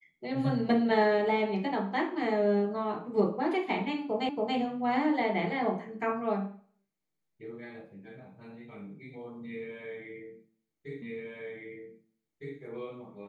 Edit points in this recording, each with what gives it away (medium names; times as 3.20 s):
4.29 s: repeat of the last 0.28 s
11.02 s: repeat of the last 1.56 s